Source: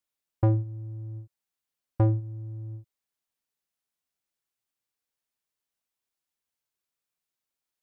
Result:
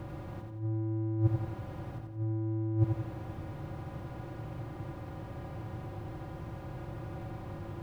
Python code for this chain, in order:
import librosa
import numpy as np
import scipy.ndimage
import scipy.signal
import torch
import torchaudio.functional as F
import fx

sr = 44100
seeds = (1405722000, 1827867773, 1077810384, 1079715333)

p1 = fx.bin_compress(x, sr, power=0.4)
p2 = fx.low_shelf(p1, sr, hz=73.0, db=5.5)
p3 = fx.over_compress(p2, sr, threshold_db=-30.0, ratio=-0.5)
p4 = fx.peak_eq(p3, sr, hz=180.0, db=5.5, octaves=0.98)
y = p4 + fx.echo_feedback(p4, sr, ms=88, feedback_pct=48, wet_db=-5, dry=0)